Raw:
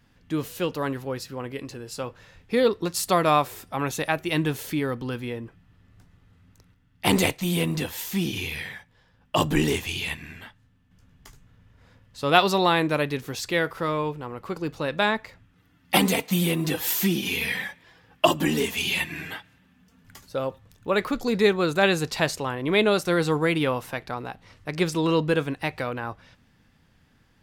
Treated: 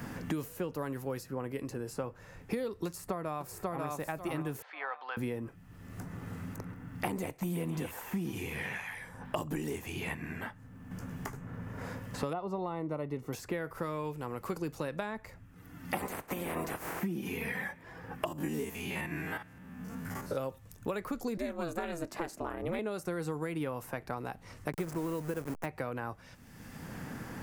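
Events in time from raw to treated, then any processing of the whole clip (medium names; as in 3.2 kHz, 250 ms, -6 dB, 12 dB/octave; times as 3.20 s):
2.86–3.88 s: echo throw 540 ms, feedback 20%, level -4.5 dB
4.62–5.17 s: elliptic band-pass 720–4000 Hz, stop band 60 dB
7.29–9.48 s: repeats whose band climbs or falls 132 ms, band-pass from 1.1 kHz, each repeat 1.4 oct, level -2 dB
12.33–13.33 s: Savitzky-Golay filter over 65 samples
15.97–16.99 s: spectral peaks clipped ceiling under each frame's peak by 26 dB
18.28–20.38 s: spectrogram pixelated in time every 50 ms
21.37–22.79 s: ring modulator 170 Hz
24.72–25.66 s: send-on-delta sampling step -28 dBFS
whole clip: compression, threshold -24 dBFS; peaking EQ 3.6 kHz -14 dB 1.3 oct; three bands compressed up and down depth 100%; trim -6.5 dB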